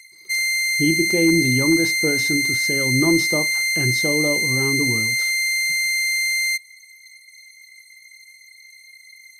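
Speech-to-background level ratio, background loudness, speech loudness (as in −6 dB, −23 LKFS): −4.5 dB, −18.5 LKFS, −23.0 LKFS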